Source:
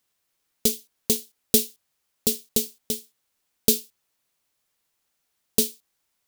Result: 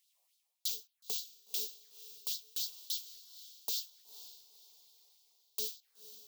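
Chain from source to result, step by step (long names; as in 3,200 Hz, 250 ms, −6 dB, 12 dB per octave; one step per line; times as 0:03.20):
reversed playback
downward compressor 4 to 1, threshold −34 dBFS, peak gain reduction 18 dB
reversed playback
phaser swept by the level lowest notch 250 Hz, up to 2,000 Hz, full sweep at −37 dBFS
auto-filter high-pass sine 3.5 Hz 620–4,100 Hz
feedback delay with all-pass diffusion 501 ms, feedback 41%, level −14 dB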